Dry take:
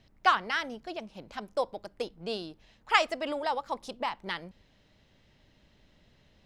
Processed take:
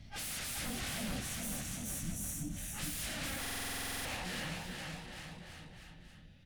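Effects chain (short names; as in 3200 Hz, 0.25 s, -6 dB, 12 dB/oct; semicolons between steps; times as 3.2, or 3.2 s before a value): phase scrambler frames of 0.2 s; Doppler pass-by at 1.62, 24 m/s, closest 9.8 m; sine folder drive 14 dB, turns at -35.5 dBFS; tube stage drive 42 dB, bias 0.6; tone controls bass +6 dB, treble -4 dB; spectral delete 1.2–2.56, 340–5500 Hz; fifteen-band EQ 400 Hz -10 dB, 1000 Hz -9 dB, 10000 Hz +7 dB; bouncing-ball echo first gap 0.42 s, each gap 0.9×, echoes 5; stuck buffer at 3.4, samples 2048, times 13; gain +4.5 dB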